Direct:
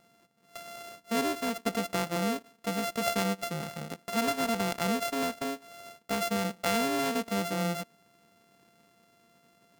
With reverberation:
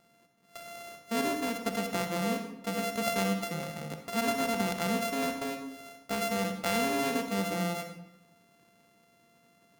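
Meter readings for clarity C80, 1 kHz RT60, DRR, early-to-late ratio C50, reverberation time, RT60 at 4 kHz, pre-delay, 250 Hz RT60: 8.5 dB, 0.90 s, 5.5 dB, 6.5 dB, 0.95 s, 0.60 s, 38 ms, 1.0 s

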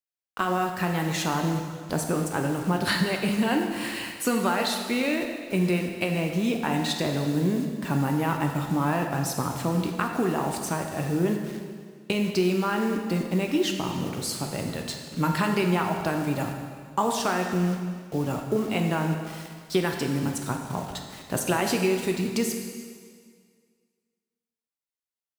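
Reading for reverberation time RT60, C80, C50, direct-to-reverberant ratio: 1.9 s, 6.0 dB, 4.5 dB, 2.5 dB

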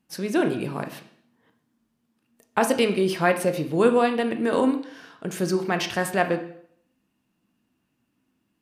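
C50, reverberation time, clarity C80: 10.5 dB, 0.60 s, 14.0 dB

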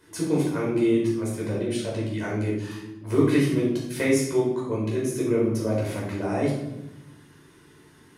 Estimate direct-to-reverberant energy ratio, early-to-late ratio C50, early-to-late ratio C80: -5.5 dB, 2.5 dB, 5.5 dB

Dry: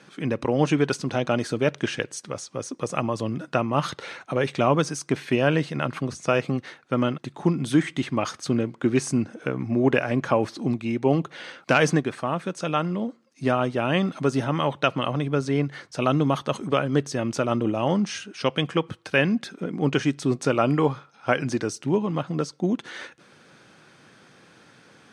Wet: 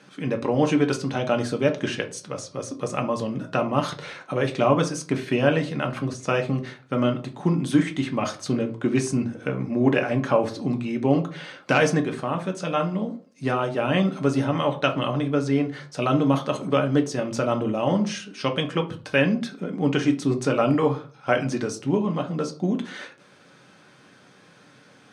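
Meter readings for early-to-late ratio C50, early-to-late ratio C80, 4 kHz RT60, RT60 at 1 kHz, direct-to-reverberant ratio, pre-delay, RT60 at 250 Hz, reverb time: 14.0 dB, 19.0 dB, 0.25 s, 0.40 s, 4.0 dB, 4 ms, 0.45 s, 0.40 s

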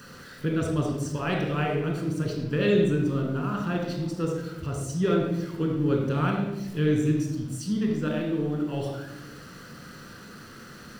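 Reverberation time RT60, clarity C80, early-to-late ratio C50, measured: 1.1 s, 5.0 dB, 2.5 dB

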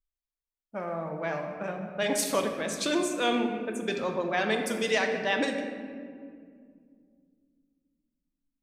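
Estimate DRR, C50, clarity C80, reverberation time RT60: 3.0 dB, 5.0 dB, 6.5 dB, 2.2 s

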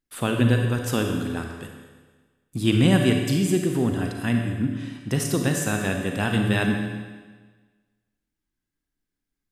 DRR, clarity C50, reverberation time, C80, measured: 2.5 dB, 3.5 dB, 1.4 s, 5.0 dB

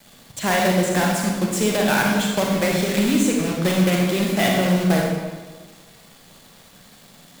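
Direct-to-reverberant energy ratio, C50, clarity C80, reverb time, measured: -1.5 dB, 0.5 dB, 3.0 dB, 1.4 s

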